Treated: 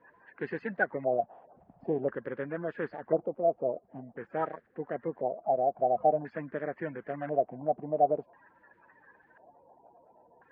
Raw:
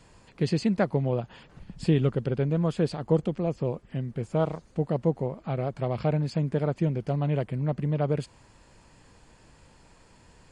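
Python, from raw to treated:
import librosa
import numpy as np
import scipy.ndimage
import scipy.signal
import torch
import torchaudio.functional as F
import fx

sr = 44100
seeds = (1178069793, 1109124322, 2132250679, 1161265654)

y = fx.spec_quant(x, sr, step_db=30)
y = fx.filter_lfo_lowpass(y, sr, shape='square', hz=0.48, low_hz=710.0, high_hz=1700.0, q=6.4)
y = fx.bandpass_q(y, sr, hz=1100.0, q=0.52)
y = y * librosa.db_to_amplitude(-5.0)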